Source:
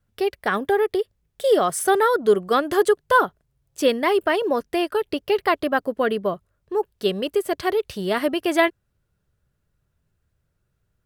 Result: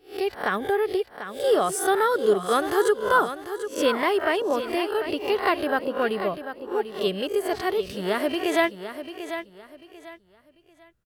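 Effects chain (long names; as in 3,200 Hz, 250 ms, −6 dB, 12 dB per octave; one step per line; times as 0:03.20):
peak hold with a rise ahead of every peak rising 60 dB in 0.34 s
on a send: repeating echo 743 ms, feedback 28%, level −10.5 dB
on the sum: level −4 dB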